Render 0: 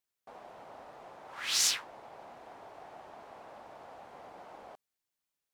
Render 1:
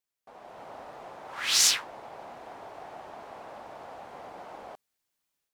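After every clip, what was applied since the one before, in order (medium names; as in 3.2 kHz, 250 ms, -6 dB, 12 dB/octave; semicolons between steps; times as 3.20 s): level rider gain up to 7.5 dB; trim -1.5 dB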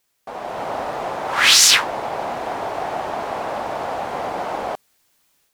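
loudness maximiser +19.5 dB; trim -1 dB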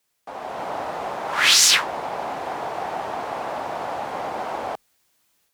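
frequency shift +29 Hz; trim -3 dB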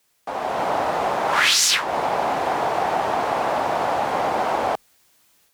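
compression 6:1, threshold -22 dBFS, peak gain reduction 10.5 dB; trim +7 dB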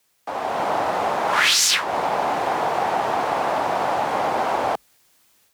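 frequency shift +17 Hz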